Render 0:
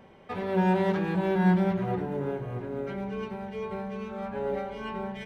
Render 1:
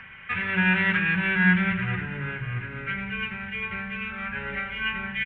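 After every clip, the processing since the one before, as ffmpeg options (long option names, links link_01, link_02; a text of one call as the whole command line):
ffmpeg -i in.wav -filter_complex "[0:a]firequalizer=gain_entry='entry(110,0);entry(310,-17);entry(700,-19);entry(1500,9);entry(2600,13);entry(4500,-17)':delay=0.05:min_phase=1,acrossover=split=100|710|1700[link_01][link_02][link_03][link_04];[link_03]acompressor=mode=upward:threshold=-48dB:ratio=2.5[link_05];[link_01][link_02][link_05][link_04]amix=inputs=4:normalize=0,volume=6.5dB" out.wav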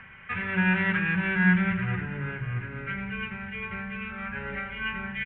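ffmpeg -i in.wav -af "lowpass=frequency=1600:poles=1" out.wav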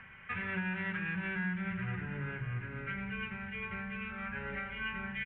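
ffmpeg -i in.wav -af "acompressor=threshold=-28dB:ratio=6,volume=-5dB" out.wav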